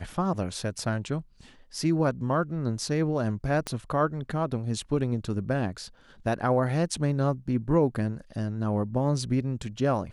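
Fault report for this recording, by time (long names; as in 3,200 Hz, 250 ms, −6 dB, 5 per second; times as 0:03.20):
0:03.67: click −16 dBFS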